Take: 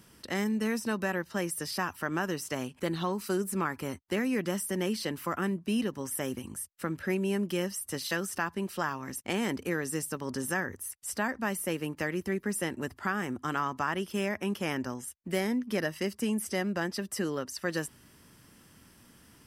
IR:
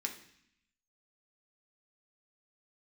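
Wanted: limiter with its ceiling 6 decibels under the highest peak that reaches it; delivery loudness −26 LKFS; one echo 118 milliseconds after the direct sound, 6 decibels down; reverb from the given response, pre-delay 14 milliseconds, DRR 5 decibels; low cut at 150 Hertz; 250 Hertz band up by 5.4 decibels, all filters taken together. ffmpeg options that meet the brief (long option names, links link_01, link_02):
-filter_complex "[0:a]highpass=150,equalizer=frequency=250:width_type=o:gain=8,alimiter=limit=-21dB:level=0:latency=1,aecho=1:1:118:0.501,asplit=2[link_01][link_02];[1:a]atrim=start_sample=2205,adelay=14[link_03];[link_02][link_03]afir=irnorm=-1:irlink=0,volume=-6dB[link_04];[link_01][link_04]amix=inputs=2:normalize=0,volume=3.5dB"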